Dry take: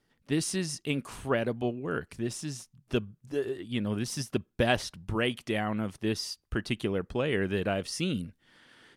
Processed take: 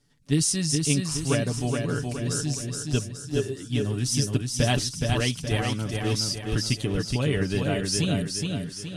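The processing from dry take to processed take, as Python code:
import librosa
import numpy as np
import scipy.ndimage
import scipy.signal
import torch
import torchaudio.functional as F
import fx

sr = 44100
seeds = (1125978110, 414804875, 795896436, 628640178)

p1 = scipy.signal.sosfilt(scipy.signal.butter(2, 8900.0, 'lowpass', fs=sr, output='sos'), x)
p2 = fx.bass_treble(p1, sr, bass_db=10, treble_db=15)
p3 = p2 + 0.56 * np.pad(p2, (int(7.0 * sr / 1000.0), 0))[:len(p2)]
p4 = p3 + fx.echo_feedback(p3, sr, ms=420, feedback_pct=46, wet_db=-4.0, dry=0)
y = F.gain(torch.from_numpy(p4), -2.5).numpy()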